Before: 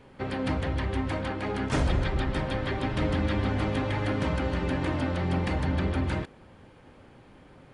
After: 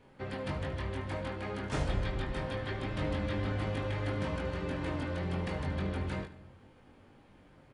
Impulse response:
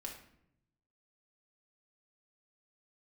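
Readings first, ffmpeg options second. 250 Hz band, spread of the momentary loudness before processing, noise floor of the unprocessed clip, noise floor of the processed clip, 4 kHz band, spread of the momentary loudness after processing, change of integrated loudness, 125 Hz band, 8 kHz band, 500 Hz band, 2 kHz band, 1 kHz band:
−8.0 dB, 4 LU, −54 dBFS, −59 dBFS, −6.5 dB, 4 LU, −7.0 dB, −6.5 dB, −6.5 dB, −5.5 dB, −6.5 dB, −7.5 dB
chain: -filter_complex "[0:a]asplit=2[link_01][link_02];[link_02]adelay=21,volume=-4.5dB[link_03];[link_01][link_03]amix=inputs=2:normalize=0,asplit=2[link_04][link_05];[1:a]atrim=start_sample=2205,adelay=74[link_06];[link_05][link_06]afir=irnorm=-1:irlink=0,volume=-10dB[link_07];[link_04][link_07]amix=inputs=2:normalize=0,volume=-8dB"

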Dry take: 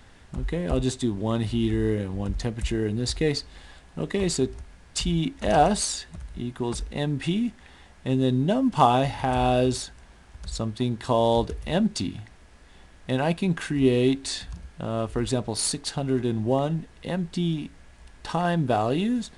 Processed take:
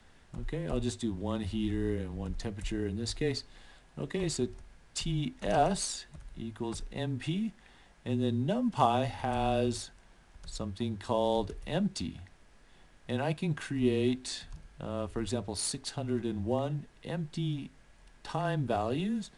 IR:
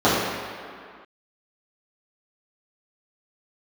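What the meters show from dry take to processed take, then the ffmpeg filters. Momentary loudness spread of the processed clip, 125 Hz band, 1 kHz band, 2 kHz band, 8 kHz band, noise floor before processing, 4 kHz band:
13 LU, −7.5 dB, −8.0 dB, −7.5 dB, −7.5 dB, −51 dBFS, −7.5 dB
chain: -af "afreqshift=-17,bandreject=frequency=50:width_type=h:width=6,bandreject=frequency=100:width_type=h:width=6,volume=-7.5dB"

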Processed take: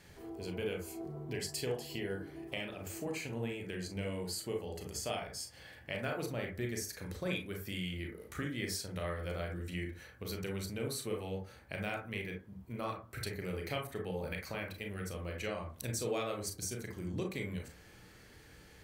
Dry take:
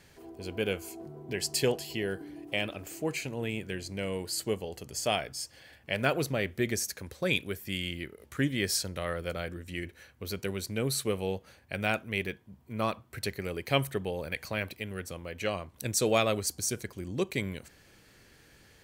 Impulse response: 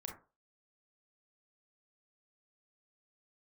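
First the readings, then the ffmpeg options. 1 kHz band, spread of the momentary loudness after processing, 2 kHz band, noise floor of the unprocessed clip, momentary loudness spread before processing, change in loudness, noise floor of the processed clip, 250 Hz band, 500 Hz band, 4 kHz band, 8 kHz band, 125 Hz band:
−8.0 dB, 7 LU, −8.0 dB, −60 dBFS, 11 LU, −7.0 dB, −58 dBFS, −6.0 dB, −7.0 dB, −8.5 dB, −8.0 dB, −4.5 dB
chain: -filter_complex "[0:a]acompressor=threshold=-39dB:ratio=2.5[link_01];[1:a]atrim=start_sample=2205[link_02];[link_01][link_02]afir=irnorm=-1:irlink=0,volume=3.5dB"

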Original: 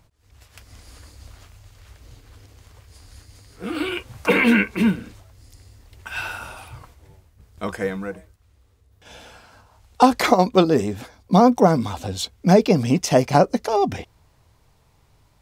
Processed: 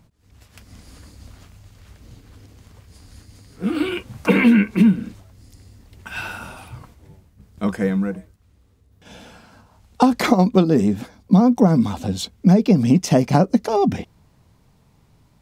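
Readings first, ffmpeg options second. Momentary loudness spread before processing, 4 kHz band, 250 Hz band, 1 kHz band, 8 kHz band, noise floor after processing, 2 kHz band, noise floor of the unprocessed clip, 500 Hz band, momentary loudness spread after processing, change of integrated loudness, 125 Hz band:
16 LU, −2.5 dB, +4.5 dB, −3.5 dB, −2.0 dB, −57 dBFS, −2.5 dB, −59 dBFS, −2.0 dB, 16 LU, +1.5 dB, +4.5 dB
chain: -af "equalizer=frequency=200:width_type=o:width=1.2:gain=12,acompressor=threshold=-9dB:ratio=6,volume=-1dB"

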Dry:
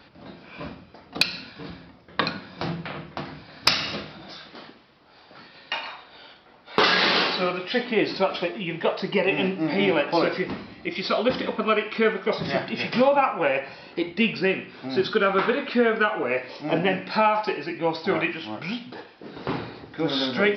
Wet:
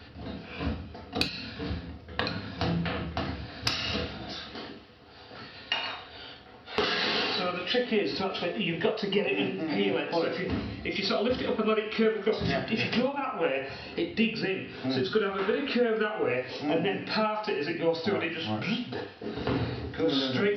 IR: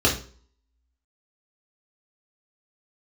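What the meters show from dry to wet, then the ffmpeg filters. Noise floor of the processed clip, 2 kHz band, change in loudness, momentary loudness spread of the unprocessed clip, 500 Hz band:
−48 dBFS, −6.5 dB, −5.5 dB, 17 LU, −4.0 dB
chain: -filter_complex "[0:a]acompressor=threshold=-28dB:ratio=6,asplit=2[link_01][link_02];[1:a]atrim=start_sample=2205,atrim=end_sample=3087,lowshelf=frequency=230:gain=5.5[link_03];[link_02][link_03]afir=irnorm=-1:irlink=0,volume=-18.5dB[link_04];[link_01][link_04]amix=inputs=2:normalize=0"

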